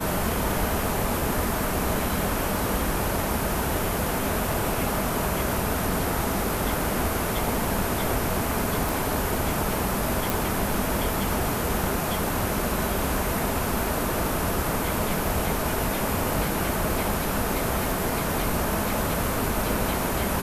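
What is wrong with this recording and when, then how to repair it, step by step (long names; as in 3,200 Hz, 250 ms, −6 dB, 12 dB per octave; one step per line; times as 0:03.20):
0:08.89: click
0:10.30: click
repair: click removal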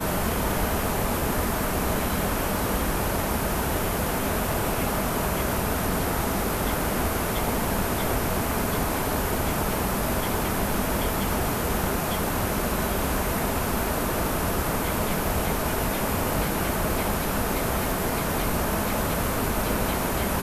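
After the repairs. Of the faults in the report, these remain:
none of them is left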